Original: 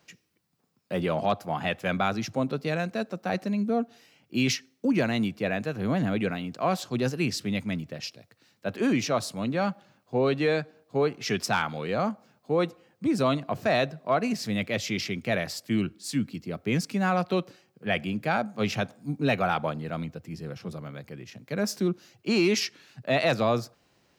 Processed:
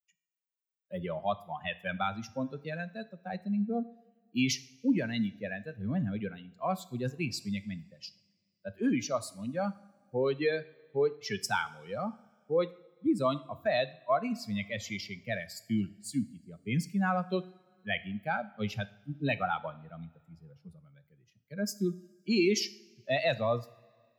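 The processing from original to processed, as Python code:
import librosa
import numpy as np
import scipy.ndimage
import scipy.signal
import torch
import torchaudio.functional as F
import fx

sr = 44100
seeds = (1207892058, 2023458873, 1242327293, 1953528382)

y = fx.bin_expand(x, sr, power=2.0)
y = fx.rev_double_slope(y, sr, seeds[0], early_s=0.55, late_s=2.2, knee_db=-18, drr_db=13.5)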